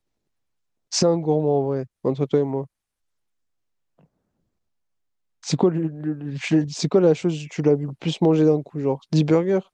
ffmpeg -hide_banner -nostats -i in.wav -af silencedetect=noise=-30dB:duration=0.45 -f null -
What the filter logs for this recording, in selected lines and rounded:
silence_start: 0.00
silence_end: 0.92 | silence_duration: 0.92
silence_start: 2.64
silence_end: 5.44 | silence_duration: 2.80